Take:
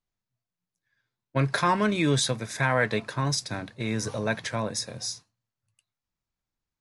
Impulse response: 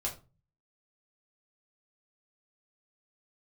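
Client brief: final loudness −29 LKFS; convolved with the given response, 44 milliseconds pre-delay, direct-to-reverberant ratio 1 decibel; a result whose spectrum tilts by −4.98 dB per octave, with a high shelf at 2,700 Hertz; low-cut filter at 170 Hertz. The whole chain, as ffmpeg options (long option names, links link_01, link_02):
-filter_complex "[0:a]highpass=170,highshelf=frequency=2700:gain=-8,asplit=2[link_01][link_02];[1:a]atrim=start_sample=2205,adelay=44[link_03];[link_02][link_03]afir=irnorm=-1:irlink=0,volume=-3.5dB[link_04];[link_01][link_04]amix=inputs=2:normalize=0,volume=-2.5dB"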